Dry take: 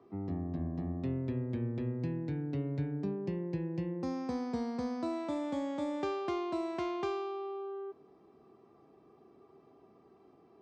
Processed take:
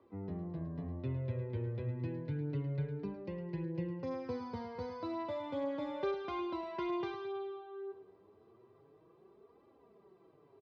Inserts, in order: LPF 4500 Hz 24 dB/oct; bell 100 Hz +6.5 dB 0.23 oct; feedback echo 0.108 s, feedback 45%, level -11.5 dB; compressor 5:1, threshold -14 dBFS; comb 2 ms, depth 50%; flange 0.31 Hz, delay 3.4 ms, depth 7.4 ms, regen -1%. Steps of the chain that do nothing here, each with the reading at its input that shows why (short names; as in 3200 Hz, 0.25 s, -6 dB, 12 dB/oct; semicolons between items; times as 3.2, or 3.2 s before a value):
compressor, threshold -14 dBFS: input peak -21.5 dBFS